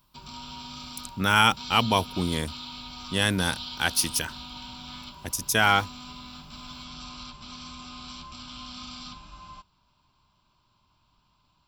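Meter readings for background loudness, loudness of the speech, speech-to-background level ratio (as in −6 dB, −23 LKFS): −39.5 LKFS, −24.0 LKFS, 15.5 dB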